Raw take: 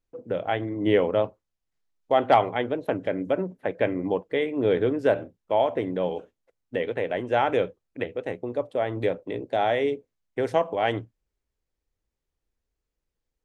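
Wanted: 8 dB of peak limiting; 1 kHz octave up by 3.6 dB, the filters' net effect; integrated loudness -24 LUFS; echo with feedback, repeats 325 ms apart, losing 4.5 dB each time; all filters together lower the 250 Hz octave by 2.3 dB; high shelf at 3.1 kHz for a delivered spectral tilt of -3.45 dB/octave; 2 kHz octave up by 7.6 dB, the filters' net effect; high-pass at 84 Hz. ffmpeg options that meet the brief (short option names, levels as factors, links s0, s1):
-af "highpass=84,equalizer=f=250:t=o:g=-3.5,equalizer=f=1000:t=o:g=4,equalizer=f=2000:t=o:g=9,highshelf=f=3100:g=-3.5,alimiter=limit=0.266:level=0:latency=1,aecho=1:1:325|650|975|1300|1625|1950|2275|2600|2925:0.596|0.357|0.214|0.129|0.0772|0.0463|0.0278|0.0167|0.01,volume=1.12"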